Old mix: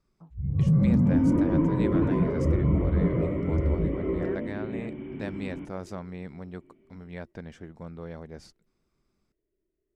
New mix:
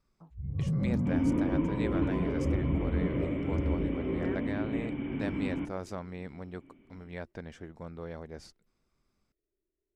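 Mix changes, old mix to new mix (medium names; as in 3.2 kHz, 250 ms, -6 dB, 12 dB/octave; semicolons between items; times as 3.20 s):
first sound -5.5 dB; second sound +6.5 dB; master: add peaking EQ 170 Hz -4 dB 1.2 oct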